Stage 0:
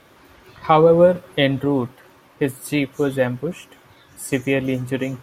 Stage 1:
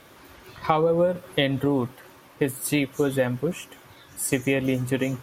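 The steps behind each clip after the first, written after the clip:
high-shelf EQ 5,400 Hz +5.5 dB
downward compressor 6 to 1, threshold −18 dBFS, peak gain reduction 10 dB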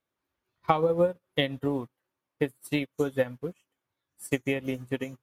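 expander for the loud parts 2.5 to 1, over −41 dBFS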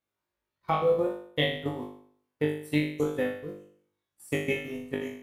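output level in coarse steps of 13 dB
on a send: flutter between parallel walls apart 3.4 metres, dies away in 0.58 s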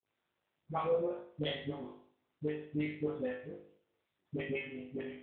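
all-pass dispersion highs, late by 71 ms, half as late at 510 Hz
level −7.5 dB
AMR narrowband 7.95 kbit/s 8,000 Hz

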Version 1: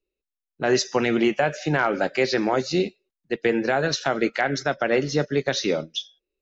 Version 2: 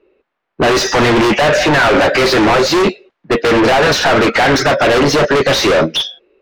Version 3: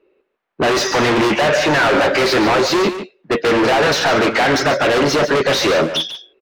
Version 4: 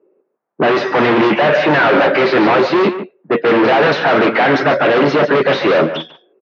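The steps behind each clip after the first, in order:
low-pass that shuts in the quiet parts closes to 2,100 Hz, open at −19 dBFS; mid-hump overdrive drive 33 dB, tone 1,000 Hz, clips at −6.5 dBFS; sine wavefolder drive 7 dB, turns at −8 dBFS
low-shelf EQ 84 Hz −8.5 dB; single-tap delay 145 ms −11 dB; level −3.5 dB
high-frequency loss of the air 160 metres; low-pass that shuts in the quiet parts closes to 930 Hz, open at −6.5 dBFS; high-pass filter 130 Hz 24 dB per octave; level +3.5 dB

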